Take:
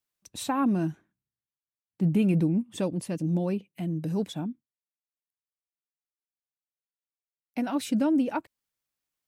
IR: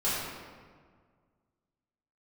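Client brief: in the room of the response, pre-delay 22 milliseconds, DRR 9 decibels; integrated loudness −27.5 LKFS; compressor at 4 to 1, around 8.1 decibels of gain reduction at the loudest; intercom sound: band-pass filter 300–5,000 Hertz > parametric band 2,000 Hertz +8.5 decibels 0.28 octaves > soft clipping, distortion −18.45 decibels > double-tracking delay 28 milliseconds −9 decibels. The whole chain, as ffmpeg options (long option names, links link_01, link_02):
-filter_complex "[0:a]acompressor=threshold=-30dB:ratio=4,asplit=2[link_01][link_02];[1:a]atrim=start_sample=2205,adelay=22[link_03];[link_02][link_03]afir=irnorm=-1:irlink=0,volume=-19dB[link_04];[link_01][link_04]amix=inputs=2:normalize=0,highpass=300,lowpass=5000,equalizer=frequency=2000:width_type=o:width=0.28:gain=8.5,asoftclip=threshold=-27.5dB,asplit=2[link_05][link_06];[link_06]adelay=28,volume=-9dB[link_07];[link_05][link_07]amix=inputs=2:normalize=0,volume=11.5dB"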